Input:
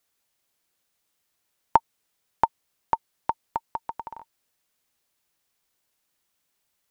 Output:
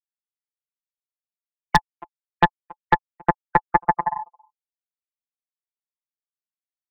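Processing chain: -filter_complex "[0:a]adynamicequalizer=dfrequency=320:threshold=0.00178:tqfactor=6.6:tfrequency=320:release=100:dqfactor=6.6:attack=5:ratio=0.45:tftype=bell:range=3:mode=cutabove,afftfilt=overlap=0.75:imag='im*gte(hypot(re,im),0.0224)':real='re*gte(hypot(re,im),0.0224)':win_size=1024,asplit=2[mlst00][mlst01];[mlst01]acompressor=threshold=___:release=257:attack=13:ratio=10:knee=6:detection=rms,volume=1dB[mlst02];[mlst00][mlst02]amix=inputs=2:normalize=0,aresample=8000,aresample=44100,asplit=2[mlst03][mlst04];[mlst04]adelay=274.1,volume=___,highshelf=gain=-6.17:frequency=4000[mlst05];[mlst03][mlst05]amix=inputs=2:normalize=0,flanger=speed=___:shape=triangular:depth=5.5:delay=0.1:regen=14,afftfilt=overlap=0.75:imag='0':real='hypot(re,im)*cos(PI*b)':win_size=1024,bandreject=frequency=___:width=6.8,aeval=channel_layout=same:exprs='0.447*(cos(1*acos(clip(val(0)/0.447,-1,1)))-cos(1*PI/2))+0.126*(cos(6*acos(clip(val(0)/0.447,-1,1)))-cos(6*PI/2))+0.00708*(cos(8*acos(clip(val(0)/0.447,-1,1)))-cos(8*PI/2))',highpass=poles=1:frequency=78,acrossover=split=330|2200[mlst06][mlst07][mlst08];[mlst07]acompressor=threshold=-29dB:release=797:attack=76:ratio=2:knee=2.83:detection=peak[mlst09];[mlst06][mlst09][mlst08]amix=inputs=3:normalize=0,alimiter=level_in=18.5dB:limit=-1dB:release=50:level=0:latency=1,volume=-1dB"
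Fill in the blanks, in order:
-32dB, -30dB, 0.61, 560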